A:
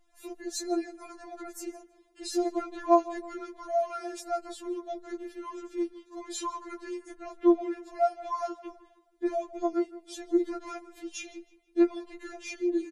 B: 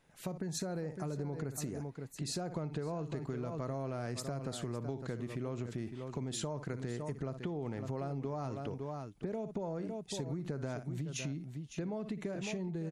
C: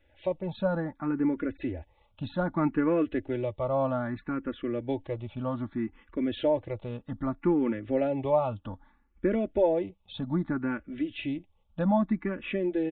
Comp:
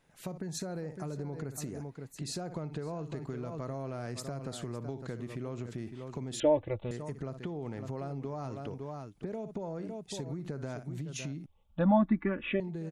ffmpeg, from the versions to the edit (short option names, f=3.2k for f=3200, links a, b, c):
-filter_complex "[2:a]asplit=2[a][b];[1:a]asplit=3[c][d][e];[c]atrim=end=6.402[f];[a]atrim=start=6.398:end=6.912[g];[d]atrim=start=6.908:end=11.462[h];[b]atrim=start=11.458:end=12.602[i];[e]atrim=start=12.598[j];[f][g]acrossfade=d=0.004:c1=hsin:c2=hsin[k];[k][h]acrossfade=d=0.004:c1=hsin:c2=hsin[l];[l][i]acrossfade=d=0.004:c1=hsin:c2=hsin[m];[m][j]acrossfade=d=0.004:c1=hsin:c2=hsin"